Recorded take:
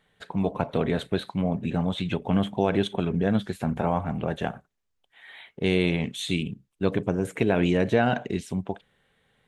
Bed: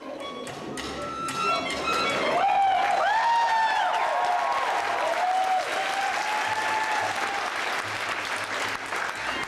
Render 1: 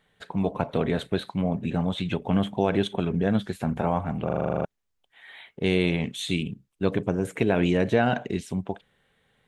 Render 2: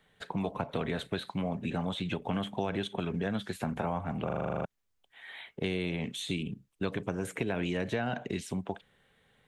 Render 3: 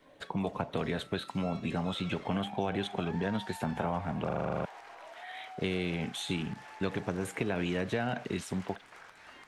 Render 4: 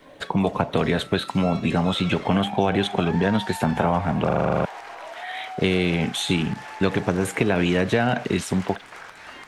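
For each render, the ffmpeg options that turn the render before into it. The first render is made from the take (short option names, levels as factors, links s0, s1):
-filter_complex "[0:a]asplit=11[s0][s1][s2][s3][s4][s5][s6][s7][s8][s9][s10];[s0]atrim=end=4.292[s11];[s1]atrim=start=4.248:end=4.292[s12];[s2]atrim=start=4.248:end=4.292[s13];[s3]atrim=start=4.248:end=4.292[s14];[s4]atrim=start=4.248:end=4.292[s15];[s5]atrim=start=4.248:end=4.292[s16];[s6]atrim=start=4.248:end=4.292[s17];[s7]atrim=start=4.248:end=4.292[s18];[s8]atrim=start=4.248:end=4.292[s19];[s9]atrim=start=4.248:end=4.292[s20];[s10]atrim=start=4.648[s21];[s11][s12]acrossfade=d=0.004:c1=hsin:c2=hsin[s22];[s22][s13]acrossfade=d=0.004:c1=hsin:c2=hsin[s23];[s23][s14]acrossfade=d=0.004:c1=hsin:c2=hsin[s24];[s24][s15]acrossfade=d=0.004:c1=hsin:c2=hsin[s25];[s25][s16]acrossfade=d=0.004:c1=hsin:c2=hsin[s26];[s26][s17]acrossfade=d=0.004:c1=hsin:c2=hsin[s27];[s27][s18]acrossfade=d=0.004:c1=hsin:c2=hsin[s28];[s28][s19]acrossfade=d=0.004:c1=hsin:c2=hsin[s29];[s29][s20]acrossfade=d=0.004:c1=hsin:c2=hsin[s30];[s30][s21]acrossfade=d=0.004:c1=hsin:c2=hsin"
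-filter_complex "[0:a]acrossover=split=210|870[s0][s1][s2];[s0]acompressor=threshold=0.0126:ratio=4[s3];[s1]acompressor=threshold=0.0178:ratio=4[s4];[s2]acompressor=threshold=0.0141:ratio=4[s5];[s3][s4][s5]amix=inputs=3:normalize=0"
-filter_complex "[1:a]volume=0.0668[s0];[0:a][s0]amix=inputs=2:normalize=0"
-af "volume=3.76"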